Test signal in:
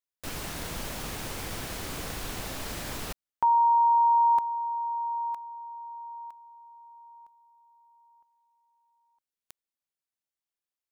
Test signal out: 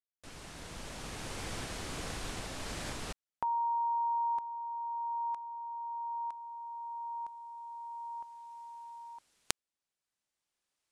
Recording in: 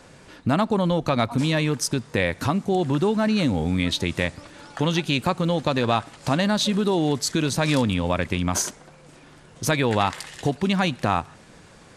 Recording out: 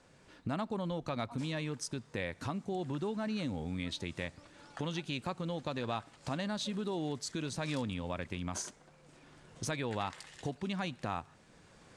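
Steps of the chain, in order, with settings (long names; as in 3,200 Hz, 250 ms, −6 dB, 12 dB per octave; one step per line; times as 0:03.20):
camcorder AGC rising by 8 dB per second, up to +38 dB
low-pass filter 10,000 Hz 24 dB per octave
level −15 dB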